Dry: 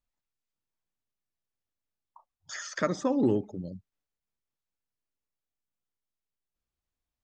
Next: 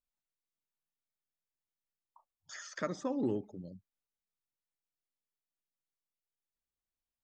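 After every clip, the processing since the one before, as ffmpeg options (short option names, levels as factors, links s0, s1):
-af "equalizer=f=66:t=o:w=0.81:g=-6.5,volume=0.398"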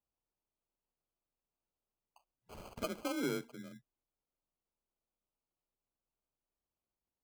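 -af "afreqshift=29,acrusher=samples=24:mix=1:aa=0.000001,volume=0.708"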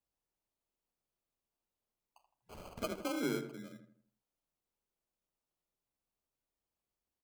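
-filter_complex "[0:a]asplit=2[s0][s1];[s1]adelay=81,lowpass=f=1700:p=1,volume=0.422,asplit=2[s2][s3];[s3]adelay=81,lowpass=f=1700:p=1,volume=0.43,asplit=2[s4][s5];[s5]adelay=81,lowpass=f=1700:p=1,volume=0.43,asplit=2[s6][s7];[s7]adelay=81,lowpass=f=1700:p=1,volume=0.43,asplit=2[s8][s9];[s9]adelay=81,lowpass=f=1700:p=1,volume=0.43[s10];[s0][s2][s4][s6][s8][s10]amix=inputs=6:normalize=0"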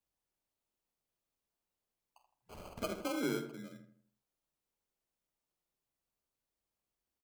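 -filter_complex "[0:a]asplit=2[s0][s1];[s1]adelay=48,volume=0.251[s2];[s0][s2]amix=inputs=2:normalize=0"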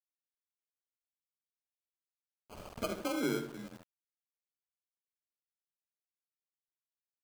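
-af "aeval=exprs='val(0)*gte(abs(val(0)),0.00282)':c=same,volume=1.26"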